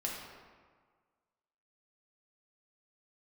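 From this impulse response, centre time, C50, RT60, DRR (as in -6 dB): 76 ms, 1.0 dB, 1.6 s, -3.0 dB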